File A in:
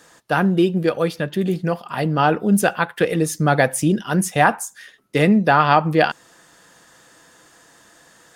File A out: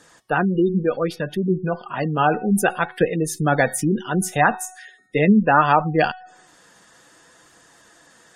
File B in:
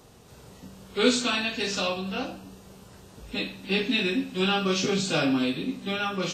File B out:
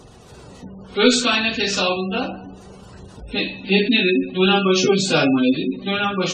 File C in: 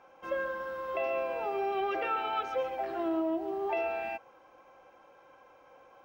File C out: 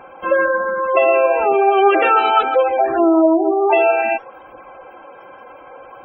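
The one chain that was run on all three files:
Chebyshev shaper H 8 -35 dB, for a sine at -1 dBFS; feedback comb 370 Hz, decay 0.76 s, mix 60%; flange 0.66 Hz, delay 0.1 ms, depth 5.1 ms, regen +72%; spectral gate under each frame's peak -25 dB strong; peak normalisation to -1.5 dBFS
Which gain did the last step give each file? +10.5 dB, +20.0 dB, +30.5 dB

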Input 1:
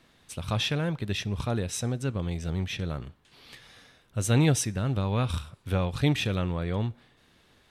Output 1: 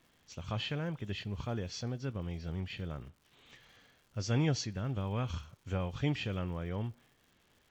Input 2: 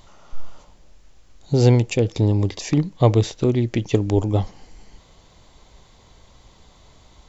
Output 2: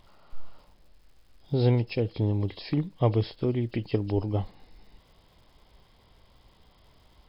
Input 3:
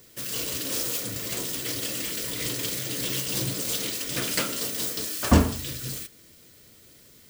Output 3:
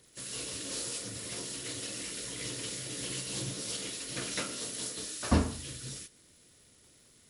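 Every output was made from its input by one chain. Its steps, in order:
knee-point frequency compression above 2.6 kHz 1.5:1; crackle 250 per s -48 dBFS; trim -8 dB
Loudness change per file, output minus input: -8.0 LU, -8.0 LU, -8.5 LU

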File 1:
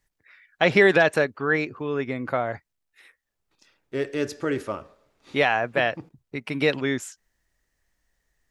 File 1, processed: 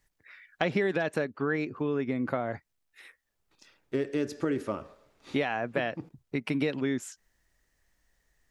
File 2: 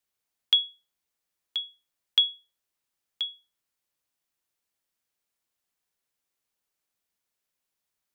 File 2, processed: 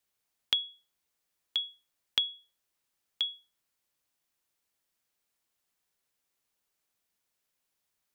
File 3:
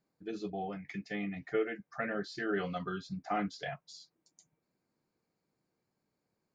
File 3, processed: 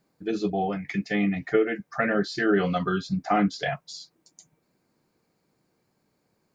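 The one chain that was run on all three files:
dynamic bell 230 Hz, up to +8 dB, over -38 dBFS, Q 0.78; compression 4:1, threshold -29 dBFS; peak normalisation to -9 dBFS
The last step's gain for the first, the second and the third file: +1.5 dB, +2.0 dB, +11.5 dB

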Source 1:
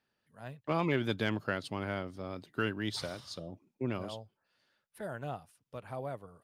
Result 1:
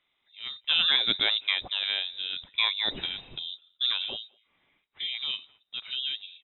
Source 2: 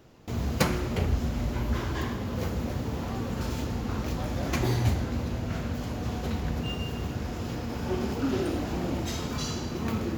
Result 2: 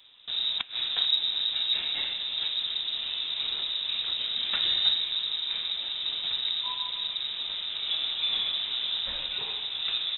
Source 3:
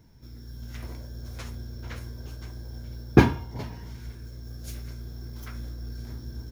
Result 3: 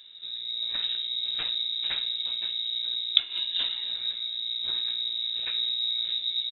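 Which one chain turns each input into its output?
inverted gate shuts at -12 dBFS, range -24 dB; frequency inversion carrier 3.8 kHz; speakerphone echo 210 ms, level -28 dB; normalise loudness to -27 LUFS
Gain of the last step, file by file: +6.5 dB, -1.0 dB, +6.0 dB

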